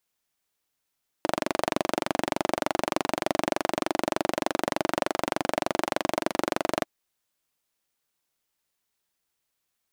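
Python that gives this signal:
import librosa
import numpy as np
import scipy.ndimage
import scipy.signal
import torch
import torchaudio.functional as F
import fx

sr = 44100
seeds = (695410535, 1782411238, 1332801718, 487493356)

y = fx.engine_single(sr, seeds[0], length_s=5.61, rpm=2800, resonances_hz=(330.0, 610.0))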